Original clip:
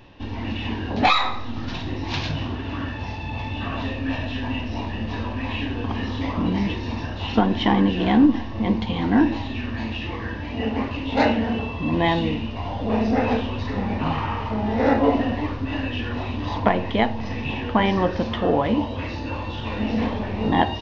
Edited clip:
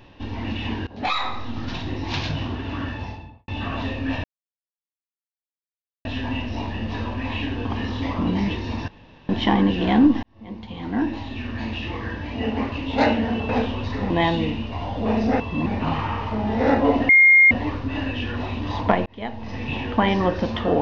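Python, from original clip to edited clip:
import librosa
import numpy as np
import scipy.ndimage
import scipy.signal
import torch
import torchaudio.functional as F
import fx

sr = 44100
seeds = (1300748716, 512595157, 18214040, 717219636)

y = fx.studio_fade_out(x, sr, start_s=2.92, length_s=0.56)
y = fx.edit(y, sr, fx.fade_in_from(start_s=0.87, length_s=0.55, floor_db=-21.0),
    fx.insert_silence(at_s=4.24, length_s=1.81),
    fx.room_tone_fill(start_s=7.07, length_s=0.41),
    fx.fade_in_span(start_s=8.42, length_s=1.52),
    fx.swap(start_s=11.68, length_s=0.26, other_s=13.24, other_length_s=0.61),
    fx.insert_tone(at_s=15.28, length_s=0.42, hz=2130.0, db=-9.0),
    fx.fade_in_span(start_s=16.83, length_s=0.65), tone=tone)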